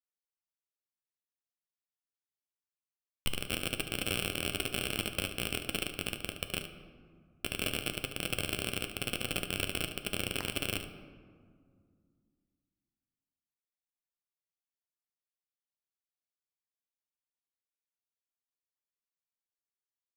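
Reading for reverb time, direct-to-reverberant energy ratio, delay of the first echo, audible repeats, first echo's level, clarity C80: 2.0 s, 5.5 dB, 73 ms, 1, -10.5 dB, 11.0 dB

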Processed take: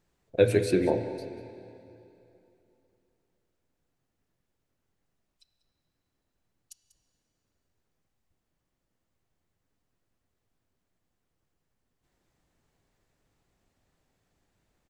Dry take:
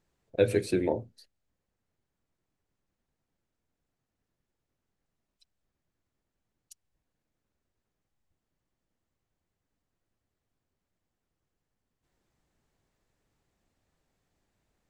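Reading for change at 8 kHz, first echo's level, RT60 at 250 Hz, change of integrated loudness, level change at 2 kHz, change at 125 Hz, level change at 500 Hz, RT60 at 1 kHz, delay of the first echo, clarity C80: +2.5 dB, -16.0 dB, 3.0 s, +2.5 dB, +3.0 dB, +4.0 dB, +3.5 dB, 2.9 s, 192 ms, 9.5 dB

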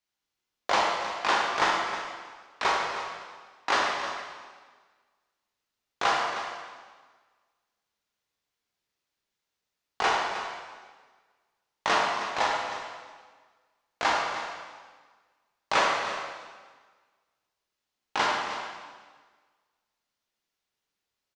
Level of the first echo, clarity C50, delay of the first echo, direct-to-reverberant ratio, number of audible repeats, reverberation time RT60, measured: -11.5 dB, 0.0 dB, 313 ms, -3.0 dB, 1, 1.5 s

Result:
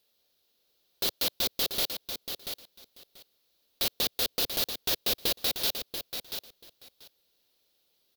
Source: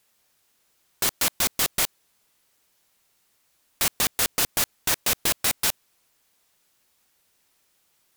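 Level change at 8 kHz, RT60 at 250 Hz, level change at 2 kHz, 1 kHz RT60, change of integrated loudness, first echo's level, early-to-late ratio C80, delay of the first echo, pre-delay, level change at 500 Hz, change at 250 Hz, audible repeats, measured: -10.5 dB, no reverb, -9.5 dB, no reverb, -6.0 dB, -8.0 dB, no reverb, 686 ms, no reverb, -1.5 dB, -4.5 dB, 2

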